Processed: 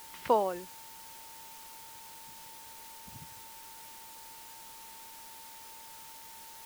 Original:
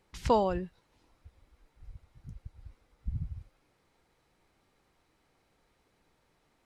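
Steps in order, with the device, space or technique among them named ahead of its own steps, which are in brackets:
shortwave radio (band-pass filter 330–2,700 Hz; amplitude tremolo 0.66 Hz, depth 56%; steady tone 900 Hz −55 dBFS; white noise bed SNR 10 dB)
level +2.5 dB

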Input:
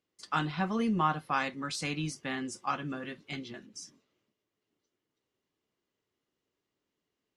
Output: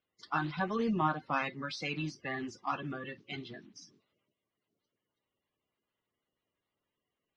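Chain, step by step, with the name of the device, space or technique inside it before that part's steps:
clip after many re-uploads (low-pass filter 5,200 Hz 24 dB per octave; spectral magnitudes quantised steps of 30 dB)
level −1.5 dB

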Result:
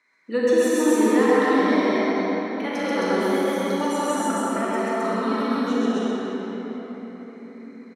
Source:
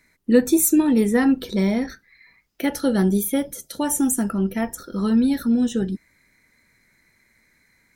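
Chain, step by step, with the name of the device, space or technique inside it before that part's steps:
station announcement (band-pass filter 420–4,900 Hz; parametric band 1,100 Hz +10.5 dB 0.4 octaves; loudspeakers that aren't time-aligned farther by 46 metres −1 dB, 91 metres 0 dB; convolution reverb RT60 4.6 s, pre-delay 32 ms, DRR −6 dB)
level −6 dB

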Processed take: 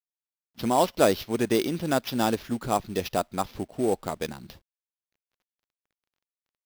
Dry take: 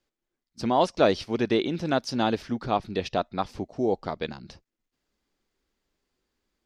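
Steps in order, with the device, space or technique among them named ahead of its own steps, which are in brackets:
early companding sampler (sample-rate reduction 8,500 Hz, jitter 0%; log-companded quantiser 6 bits)

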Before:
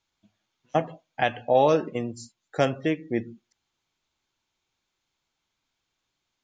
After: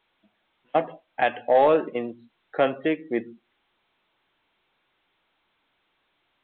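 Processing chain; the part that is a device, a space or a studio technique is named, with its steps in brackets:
telephone (band-pass filter 290–3,100 Hz; soft clipping −12 dBFS, distortion −19 dB; level +3.5 dB; A-law companding 64 kbit/s 8,000 Hz)

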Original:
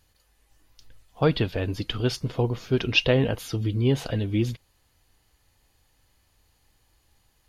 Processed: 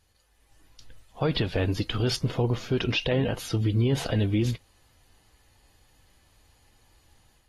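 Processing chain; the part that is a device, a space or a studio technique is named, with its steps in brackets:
low-bitrate web radio (automatic gain control gain up to 6 dB; brickwall limiter −13.5 dBFS, peak gain reduction 10.5 dB; level −2.5 dB; AAC 32 kbit/s 44,100 Hz)

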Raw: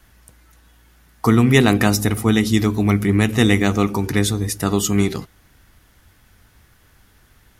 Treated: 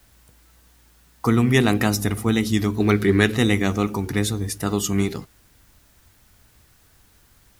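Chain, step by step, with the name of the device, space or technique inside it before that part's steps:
plain cassette with noise reduction switched in (one half of a high-frequency compander decoder only; tape wow and flutter; white noise bed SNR 36 dB)
0:02.80–0:03.37: graphic EQ with 15 bands 400 Hz +9 dB, 1,600 Hz +9 dB, 4,000 Hz +11 dB
level −4 dB

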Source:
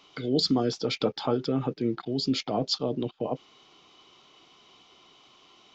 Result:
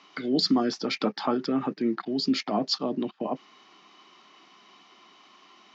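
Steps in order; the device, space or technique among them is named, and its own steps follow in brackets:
television speaker (loudspeaker in its box 190–6,500 Hz, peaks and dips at 200 Hz +5 dB, 480 Hz −8 dB, 1,100 Hz +4 dB, 1,800 Hz +8 dB, 3,400 Hz −6 dB)
level +2 dB

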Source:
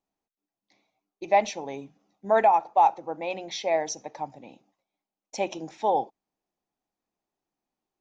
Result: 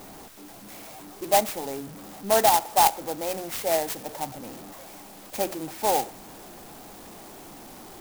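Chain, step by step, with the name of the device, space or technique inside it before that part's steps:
early CD player with a faulty converter (converter with a step at zero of −36.5 dBFS; converter with an unsteady clock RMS 0.097 ms)

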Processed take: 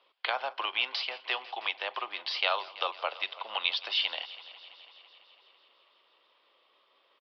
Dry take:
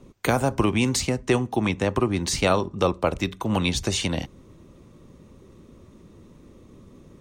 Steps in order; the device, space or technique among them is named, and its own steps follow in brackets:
0:01.01–0:01.82: high-pass filter 230 Hz
echo machine with several playback heads 166 ms, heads first and second, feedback 65%, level −21 dB
musical greeting card (downsampling to 11,025 Hz; high-pass filter 700 Hz 24 dB per octave; parametric band 3,100 Hz +11 dB 0.4 octaves)
level −5.5 dB

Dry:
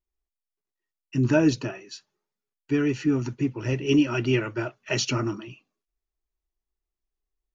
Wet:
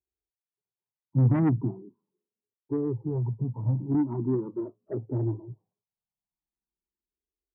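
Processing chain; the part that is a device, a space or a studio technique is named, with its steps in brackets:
Butterworth low-pass 1,000 Hz 72 dB per octave
0:01.16–0:01.94: tilt shelving filter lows +7 dB, about 660 Hz
barber-pole phaser into a guitar amplifier (frequency shifter mixed with the dry sound +0.4 Hz; soft clipping −19 dBFS, distortion −10 dB; loudspeaker in its box 82–3,700 Hz, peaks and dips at 110 Hz +9 dB, 190 Hz +4 dB, 610 Hz −8 dB, 2,000 Hz +9 dB)

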